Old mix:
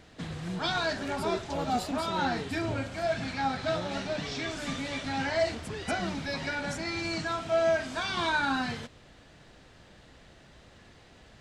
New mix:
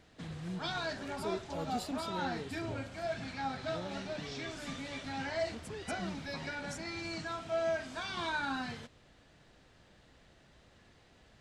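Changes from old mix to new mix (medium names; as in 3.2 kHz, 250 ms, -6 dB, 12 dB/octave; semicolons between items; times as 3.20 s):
speech -4.0 dB; background -7.5 dB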